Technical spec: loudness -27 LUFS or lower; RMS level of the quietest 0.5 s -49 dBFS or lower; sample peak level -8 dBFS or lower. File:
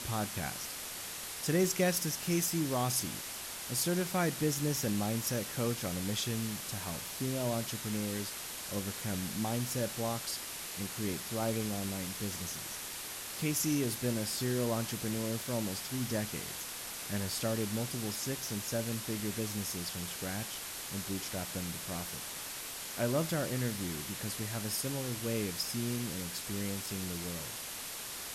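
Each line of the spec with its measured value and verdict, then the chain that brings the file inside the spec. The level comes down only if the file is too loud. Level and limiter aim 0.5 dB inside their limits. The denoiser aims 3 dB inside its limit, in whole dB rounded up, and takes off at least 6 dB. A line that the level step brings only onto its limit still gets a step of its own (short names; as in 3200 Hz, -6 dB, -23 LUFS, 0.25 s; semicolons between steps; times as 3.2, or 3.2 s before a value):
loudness -35.0 LUFS: OK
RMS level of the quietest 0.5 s -42 dBFS: fail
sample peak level -17.0 dBFS: OK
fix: denoiser 10 dB, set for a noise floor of -42 dBFS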